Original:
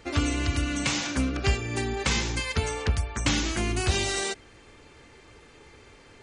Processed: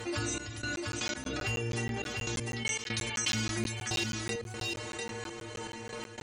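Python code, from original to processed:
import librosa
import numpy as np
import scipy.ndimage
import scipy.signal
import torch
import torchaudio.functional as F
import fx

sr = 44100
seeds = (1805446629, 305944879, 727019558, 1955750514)

p1 = fx.stiff_resonator(x, sr, f0_hz=110.0, decay_s=0.47, stiffness=0.008)
p2 = fx.clip_asym(p1, sr, top_db=-31.5, bottom_db=-30.0)
p3 = fx.low_shelf(p2, sr, hz=68.0, db=-9.0)
p4 = fx.step_gate(p3, sr, bpm=119, pattern='xxx..x..x.xxx', floor_db=-24.0, edge_ms=4.5)
p5 = fx.weighting(p4, sr, curve='D', at=(2.55, 3.33), fade=0.02)
p6 = p5 + fx.echo_single(p5, sr, ms=699, db=-10.0, dry=0)
p7 = fx.buffer_crackle(p6, sr, first_s=0.76, period_s=0.16, block=512, kind='zero')
y = fx.env_flatten(p7, sr, amount_pct=70)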